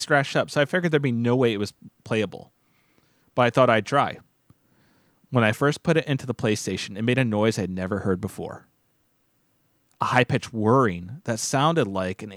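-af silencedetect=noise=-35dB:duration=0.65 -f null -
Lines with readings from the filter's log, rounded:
silence_start: 2.43
silence_end: 3.37 | silence_duration: 0.94
silence_start: 4.15
silence_end: 5.32 | silence_duration: 1.17
silence_start: 8.58
silence_end: 10.01 | silence_duration: 1.43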